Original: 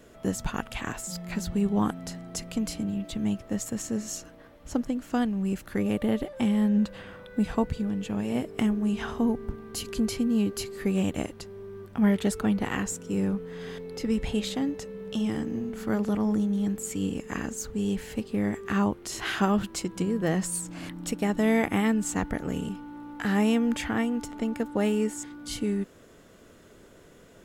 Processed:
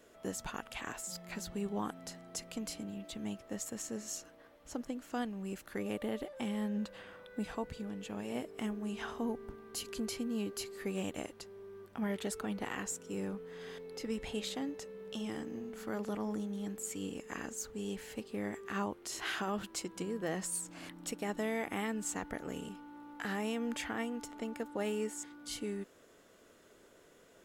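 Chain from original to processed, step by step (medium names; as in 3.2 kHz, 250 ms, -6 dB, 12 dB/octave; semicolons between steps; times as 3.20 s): tone controls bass -10 dB, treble +1 dB; peak limiter -20 dBFS, peak gain reduction 7 dB; trim -6.5 dB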